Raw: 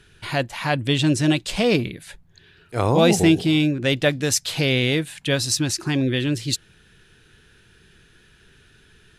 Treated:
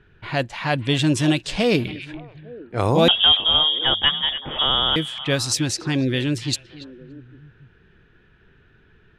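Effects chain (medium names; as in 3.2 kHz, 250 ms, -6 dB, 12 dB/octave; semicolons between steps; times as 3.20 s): 3.08–4.96 s: frequency inversion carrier 3.5 kHz; level-controlled noise filter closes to 1.7 kHz, open at -17 dBFS; repeats whose band climbs or falls 285 ms, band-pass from 2.6 kHz, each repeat -1.4 oct, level -10.5 dB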